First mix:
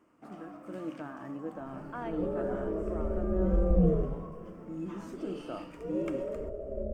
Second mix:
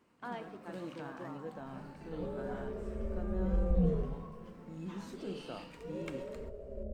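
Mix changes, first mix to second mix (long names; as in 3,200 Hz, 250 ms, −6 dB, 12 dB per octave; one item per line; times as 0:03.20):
speech: entry −1.70 s
second sound −4.0 dB
master: add thirty-one-band graphic EQ 315 Hz −12 dB, 630 Hz −7 dB, 1,250 Hz −7 dB, 4,000 Hz +12 dB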